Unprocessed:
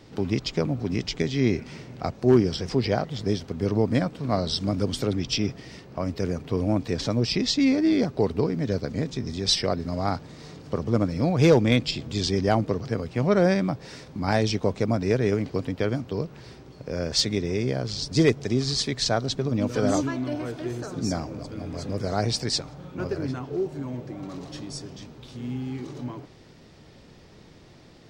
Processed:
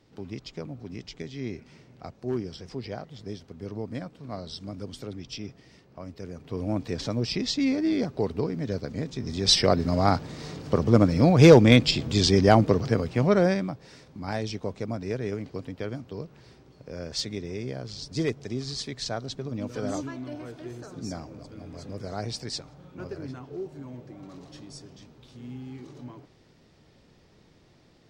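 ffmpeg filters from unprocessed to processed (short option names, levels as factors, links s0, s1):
-af "volume=1.68,afade=t=in:st=6.31:d=0.46:silence=0.398107,afade=t=in:st=9.15:d=0.54:silence=0.375837,afade=t=out:st=12.82:d=0.94:silence=0.237137"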